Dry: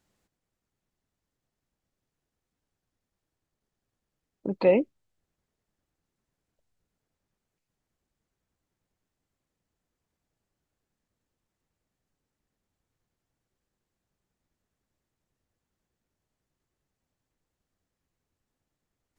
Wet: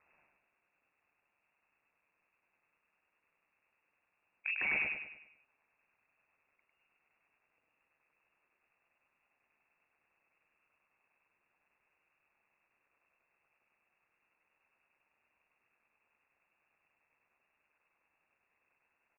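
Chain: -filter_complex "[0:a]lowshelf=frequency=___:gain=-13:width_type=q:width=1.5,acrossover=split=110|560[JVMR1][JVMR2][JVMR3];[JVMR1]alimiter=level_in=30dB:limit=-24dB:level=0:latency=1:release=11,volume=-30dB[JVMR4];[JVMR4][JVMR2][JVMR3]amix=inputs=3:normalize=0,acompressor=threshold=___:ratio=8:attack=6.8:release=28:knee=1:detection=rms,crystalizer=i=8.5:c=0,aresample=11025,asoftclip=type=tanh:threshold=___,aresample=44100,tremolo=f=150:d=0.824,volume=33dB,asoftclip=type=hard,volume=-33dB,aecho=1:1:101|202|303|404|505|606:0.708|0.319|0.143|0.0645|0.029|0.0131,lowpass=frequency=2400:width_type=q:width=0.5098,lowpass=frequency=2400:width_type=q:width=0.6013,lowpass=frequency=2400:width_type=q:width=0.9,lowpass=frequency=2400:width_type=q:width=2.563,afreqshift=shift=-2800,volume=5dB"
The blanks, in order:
110, -33dB, -30.5dB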